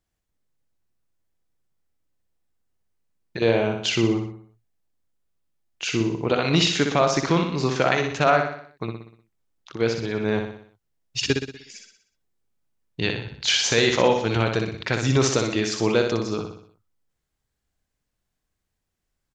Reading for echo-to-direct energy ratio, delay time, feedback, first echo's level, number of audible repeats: −4.5 dB, 61 ms, 50%, −5.5 dB, 5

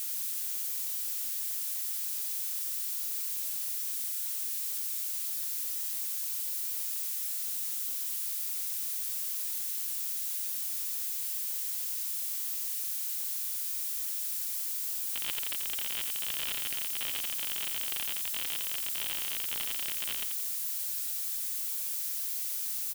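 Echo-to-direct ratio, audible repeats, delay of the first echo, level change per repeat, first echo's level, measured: −6.5 dB, 2, 86 ms, −9.5 dB, −7.0 dB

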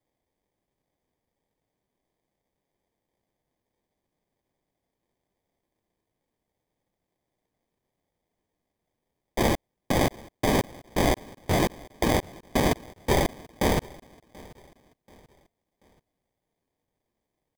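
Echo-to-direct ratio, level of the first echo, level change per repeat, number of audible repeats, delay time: −22.5 dB, −23.0 dB, −8.0 dB, 2, 734 ms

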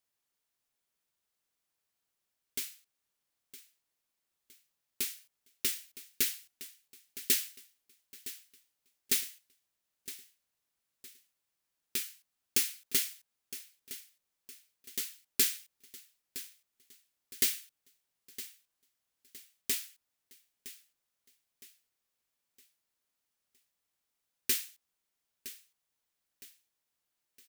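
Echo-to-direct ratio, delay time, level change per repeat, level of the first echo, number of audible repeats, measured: −14.5 dB, 963 ms, −8.0 dB, −15.0 dB, 3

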